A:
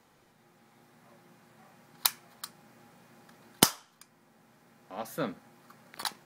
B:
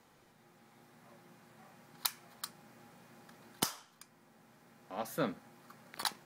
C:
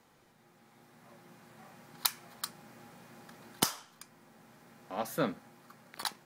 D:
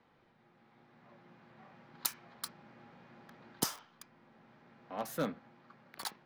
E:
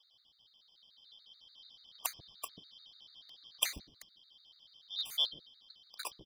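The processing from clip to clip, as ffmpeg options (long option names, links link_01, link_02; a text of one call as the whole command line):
ffmpeg -i in.wav -af "alimiter=limit=-13.5dB:level=0:latency=1:release=161,volume=-1dB" out.wav
ffmpeg -i in.wav -af "dynaudnorm=framelen=210:gausssize=11:maxgain=4.5dB" out.wav
ffmpeg -i in.wav -filter_complex "[0:a]acrossover=split=740|4200[link_01][link_02][link_03];[link_02]aeval=exprs='0.0266*(abs(mod(val(0)/0.0266+3,4)-2)-1)':channel_layout=same[link_04];[link_03]acrusher=bits=7:mix=0:aa=0.000001[link_05];[link_01][link_04][link_05]amix=inputs=3:normalize=0,volume=-3dB" out.wav
ffmpeg -i in.wav -filter_complex "[0:a]afftfilt=real='real(if(lt(b,272),68*(eq(floor(b/68),0)*2+eq(floor(b/68),1)*3+eq(floor(b/68),2)*0+eq(floor(b/68),3)*1)+mod(b,68),b),0)':imag='imag(if(lt(b,272),68*(eq(floor(b/68),0)*2+eq(floor(b/68),1)*3+eq(floor(b/68),2)*0+eq(floor(b/68),3)*1)+mod(b,68),b),0)':win_size=2048:overlap=0.75,acrossover=split=400[link_01][link_02];[link_01]adelay=140[link_03];[link_03][link_02]amix=inputs=2:normalize=0,afftfilt=real='re*gt(sin(2*PI*6.9*pts/sr)*(1-2*mod(floor(b*sr/1024/1200),2)),0)':imag='im*gt(sin(2*PI*6.9*pts/sr)*(1-2*mod(floor(b*sr/1024/1200),2)),0)':win_size=1024:overlap=0.75,volume=3dB" out.wav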